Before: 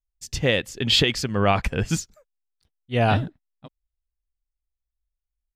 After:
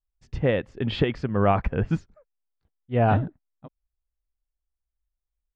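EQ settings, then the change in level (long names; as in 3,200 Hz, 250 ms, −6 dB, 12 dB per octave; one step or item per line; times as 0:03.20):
low-pass filter 1,400 Hz 12 dB per octave
0.0 dB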